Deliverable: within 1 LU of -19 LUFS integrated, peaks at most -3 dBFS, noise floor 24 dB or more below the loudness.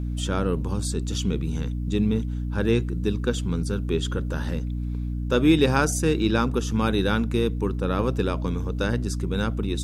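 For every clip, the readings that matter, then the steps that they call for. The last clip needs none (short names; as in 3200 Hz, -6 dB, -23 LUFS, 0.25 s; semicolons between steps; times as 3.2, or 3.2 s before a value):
hum 60 Hz; harmonics up to 300 Hz; hum level -25 dBFS; loudness -25.0 LUFS; peak -5.5 dBFS; loudness target -19.0 LUFS
-> de-hum 60 Hz, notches 5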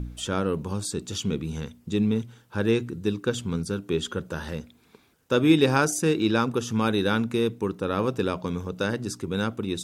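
hum none; loudness -26.5 LUFS; peak -6.5 dBFS; loudness target -19.0 LUFS
-> gain +7.5 dB; limiter -3 dBFS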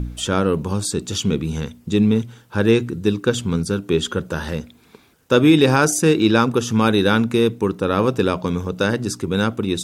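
loudness -19.0 LUFS; peak -3.0 dBFS; noise floor -53 dBFS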